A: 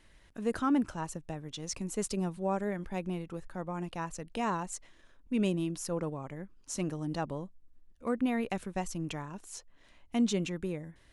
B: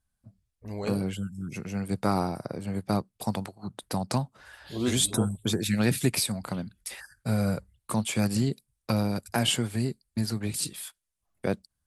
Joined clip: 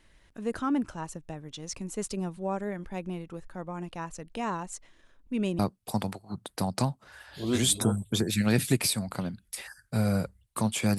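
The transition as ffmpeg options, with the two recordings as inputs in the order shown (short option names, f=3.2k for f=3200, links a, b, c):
-filter_complex "[0:a]apad=whole_dur=10.98,atrim=end=10.98,atrim=end=5.592[a];[1:a]atrim=start=2.918:end=8.31[b];[a][b]acrossfade=d=0.004:c1=hsin:c2=hsin"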